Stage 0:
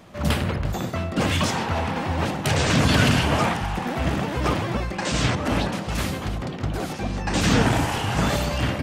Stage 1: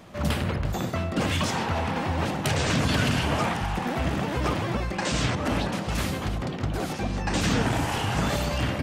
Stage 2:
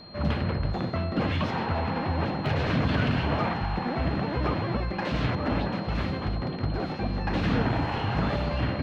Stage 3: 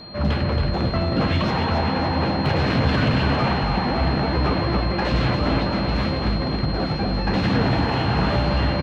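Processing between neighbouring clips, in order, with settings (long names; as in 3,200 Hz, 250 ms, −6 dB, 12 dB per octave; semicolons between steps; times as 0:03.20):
downward compressor 2 to 1, threshold −24 dBFS, peak gain reduction 6 dB
phase distortion by the signal itself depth 0.1 ms; high-frequency loss of the air 320 metres; steady tone 4,200 Hz −47 dBFS
soft clipping −19.5 dBFS, distortion −19 dB; double-tracking delay 15 ms −11 dB; repeating echo 275 ms, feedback 55%, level −6 dB; level +6 dB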